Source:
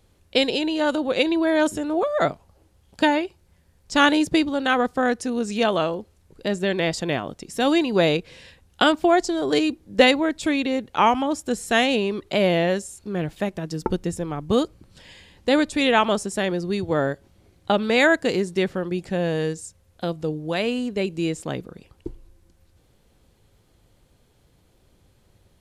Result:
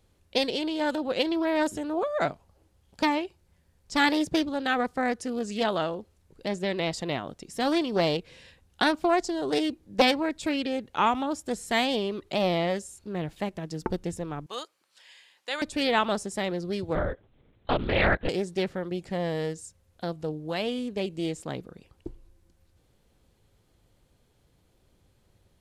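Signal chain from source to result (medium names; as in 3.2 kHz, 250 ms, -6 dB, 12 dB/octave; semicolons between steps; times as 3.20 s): 14.46–15.62 s: high-pass 1 kHz 12 dB/octave; 16.95–18.29 s: LPC vocoder at 8 kHz whisper; loudspeaker Doppler distortion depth 0.51 ms; trim -5.5 dB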